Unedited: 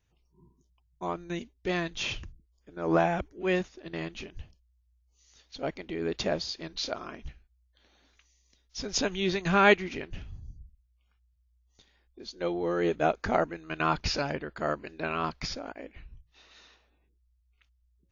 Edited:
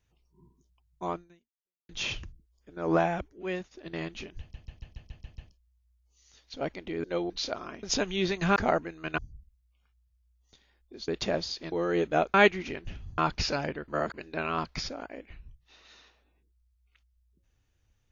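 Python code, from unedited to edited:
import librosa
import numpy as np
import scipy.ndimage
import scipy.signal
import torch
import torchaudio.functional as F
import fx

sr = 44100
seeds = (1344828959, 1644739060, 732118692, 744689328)

y = fx.edit(x, sr, fx.fade_out_span(start_s=1.15, length_s=0.74, curve='exp'),
    fx.fade_out_to(start_s=2.89, length_s=0.82, floor_db=-10.0),
    fx.stutter(start_s=4.4, slice_s=0.14, count=8),
    fx.swap(start_s=6.06, length_s=0.64, other_s=12.34, other_length_s=0.26),
    fx.cut(start_s=7.23, length_s=1.64),
    fx.swap(start_s=9.6, length_s=0.84, other_s=13.22, other_length_s=0.62),
    fx.reverse_span(start_s=14.54, length_s=0.26), tone=tone)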